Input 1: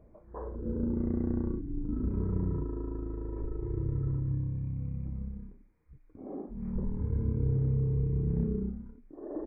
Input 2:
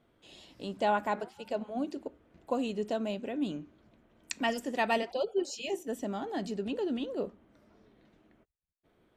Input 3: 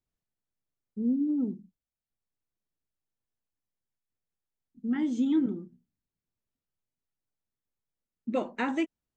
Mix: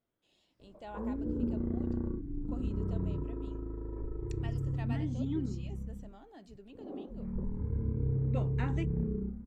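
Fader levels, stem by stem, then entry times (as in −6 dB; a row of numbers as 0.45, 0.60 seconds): −3.0, −18.5, −10.0 decibels; 0.60, 0.00, 0.00 seconds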